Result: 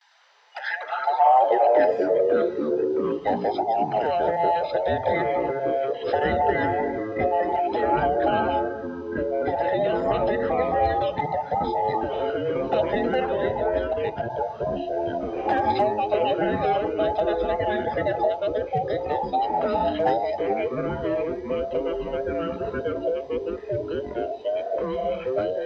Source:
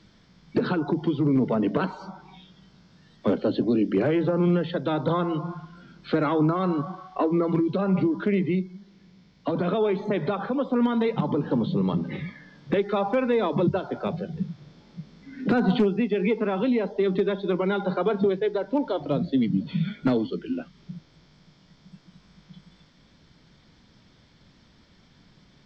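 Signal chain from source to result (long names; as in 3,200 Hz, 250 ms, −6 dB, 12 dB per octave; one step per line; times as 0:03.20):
frequency inversion band by band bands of 1,000 Hz
noise gate with hold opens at −49 dBFS
high-pass filter sweep 1,700 Hz → 92 Hz, 0:00.74–0:02.47
0:13.25–0:14.30: output level in coarse steps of 9 dB
delay with pitch and tempo change per echo 96 ms, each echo −4 semitones, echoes 3
level −1.5 dB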